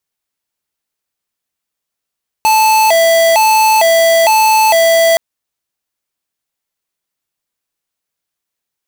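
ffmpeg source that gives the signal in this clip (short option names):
-f lavfi -i "aevalsrc='0.355*(2*lt(mod((768*t+106/1.1*(0.5-abs(mod(1.1*t,1)-0.5))),1),0.5)-1)':d=2.72:s=44100"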